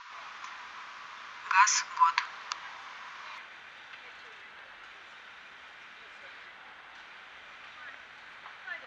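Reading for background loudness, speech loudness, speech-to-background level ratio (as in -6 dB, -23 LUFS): -47.0 LUFS, -27.0 LUFS, 20.0 dB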